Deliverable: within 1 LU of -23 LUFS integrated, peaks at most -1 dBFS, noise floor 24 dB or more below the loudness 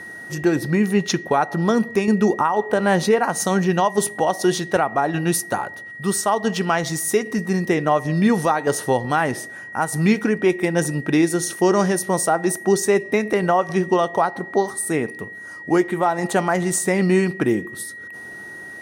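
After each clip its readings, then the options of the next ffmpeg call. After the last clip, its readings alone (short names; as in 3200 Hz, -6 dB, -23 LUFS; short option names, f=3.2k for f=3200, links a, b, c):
steady tone 1900 Hz; tone level -34 dBFS; loudness -20.0 LUFS; peak -6.0 dBFS; loudness target -23.0 LUFS
-> -af "bandreject=f=1.9k:w=30"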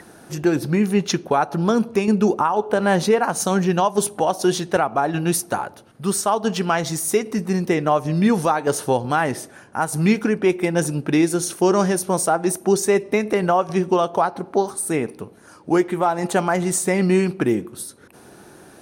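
steady tone none; loudness -20.5 LUFS; peak -6.5 dBFS; loudness target -23.0 LUFS
-> -af "volume=-2.5dB"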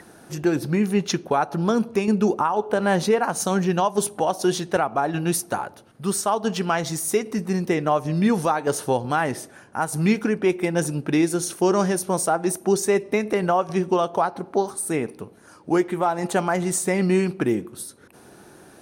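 loudness -23.0 LUFS; peak -9.0 dBFS; noise floor -49 dBFS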